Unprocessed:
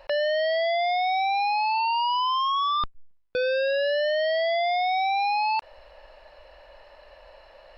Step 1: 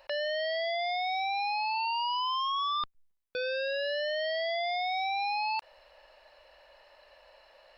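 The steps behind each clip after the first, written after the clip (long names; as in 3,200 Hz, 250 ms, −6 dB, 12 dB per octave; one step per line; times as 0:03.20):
spectral tilt +2 dB per octave
level −7 dB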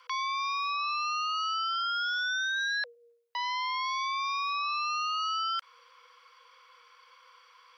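frequency shifter +470 Hz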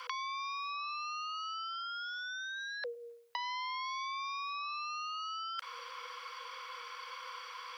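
compressor whose output falls as the input rises −38 dBFS, ratio −0.5
level +2 dB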